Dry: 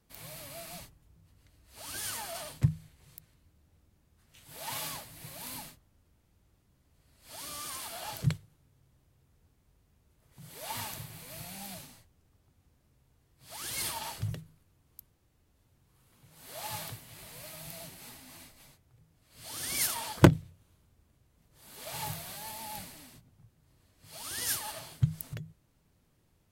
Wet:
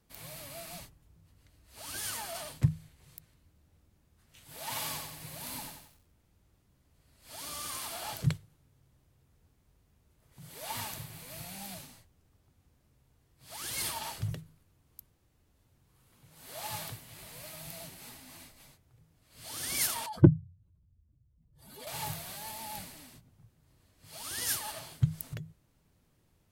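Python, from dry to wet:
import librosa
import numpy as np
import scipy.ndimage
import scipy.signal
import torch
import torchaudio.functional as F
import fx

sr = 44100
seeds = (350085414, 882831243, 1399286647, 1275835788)

y = fx.echo_crushed(x, sr, ms=90, feedback_pct=55, bits=10, wet_db=-5, at=(4.61, 8.14))
y = fx.spec_expand(y, sr, power=2.1, at=(20.06, 21.87))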